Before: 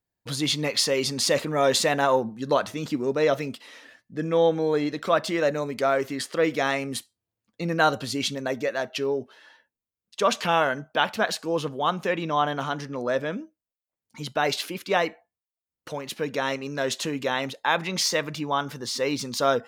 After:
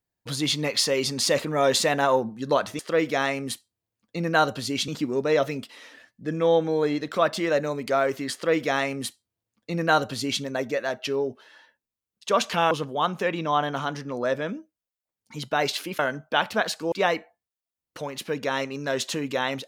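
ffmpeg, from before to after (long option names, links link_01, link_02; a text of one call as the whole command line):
ffmpeg -i in.wav -filter_complex "[0:a]asplit=6[link_01][link_02][link_03][link_04][link_05][link_06];[link_01]atrim=end=2.792[link_07];[link_02]atrim=start=6.238:end=8.332[link_08];[link_03]atrim=start=2.788:end=10.622[link_09];[link_04]atrim=start=11.548:end=14.832[link_10];[link_05]atrim=start=10.618:end=11.552[link_11];[link_06]atrim=start=14.828[link_12];[link_07][link_08]acrossfade=duration=0.004:curve1=hsin:curve2=hsin[link_13];[link_13][link_09]acrossfade=duration=0.004:curve1=hsin:curve2=hsin[link_14];[link_14][link_10]acrossfade=duration=0.004:curve1=hsin:curve2=hsin[link_15];[link_15][link_11]acrossfade=duration=0.004:curve1=hsin:curve2=hsin[link_16];[link_16][link_12]acrossfade=duration=0.004:curve1=hsin:curve2=hsin" out.wav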